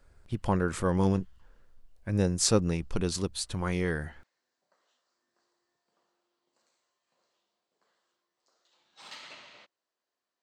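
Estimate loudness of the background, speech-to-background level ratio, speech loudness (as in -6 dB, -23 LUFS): -47.5 LUFS, 18.0 dB, -29.5 LUFS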